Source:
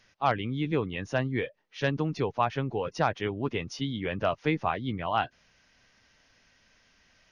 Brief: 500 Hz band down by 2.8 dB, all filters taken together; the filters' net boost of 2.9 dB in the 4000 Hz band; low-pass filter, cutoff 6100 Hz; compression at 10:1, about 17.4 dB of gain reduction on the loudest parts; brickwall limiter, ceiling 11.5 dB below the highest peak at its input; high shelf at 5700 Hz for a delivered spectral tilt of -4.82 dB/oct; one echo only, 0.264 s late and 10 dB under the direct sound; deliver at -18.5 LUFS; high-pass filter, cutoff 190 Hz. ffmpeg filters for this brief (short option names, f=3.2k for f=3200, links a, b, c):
-af "highpass=190,lowpass=6.1k,equalizer=f=500:t=o:g=-3.5,equalizer=f=4k:t=o:g=6,highshelf=f=5.7k:g=-4,acompressor=threshold=-40dB:ratio=10,alimiter=level_in=14dB:limit=-24dB:level=0:latency=1,volume=-14dB,aecho=1:1:264:0.316,volume=29.5dB"